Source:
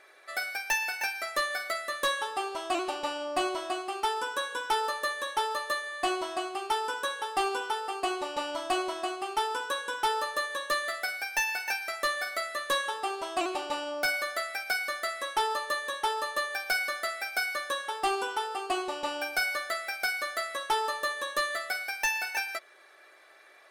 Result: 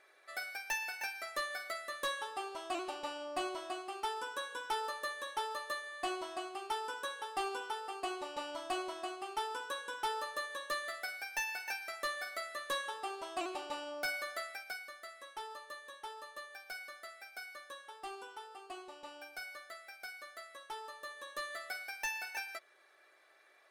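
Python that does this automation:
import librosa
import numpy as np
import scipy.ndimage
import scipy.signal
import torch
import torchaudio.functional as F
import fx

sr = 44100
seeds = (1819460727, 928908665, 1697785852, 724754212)

y = fx.gain(x, sr, db=fx.line((14.45, -8.5), (14.91, -17.0), (20.92, -17.0), (21.68, -9.5)))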